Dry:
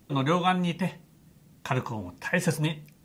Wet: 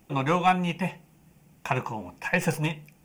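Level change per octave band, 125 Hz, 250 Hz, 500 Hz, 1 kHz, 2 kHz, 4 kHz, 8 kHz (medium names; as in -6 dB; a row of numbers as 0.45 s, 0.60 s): -1.0 dB, -1.0 dB, +0.5 dB, +3.0 dB, +2.0 dB, -2.5 dB, -1.0 dB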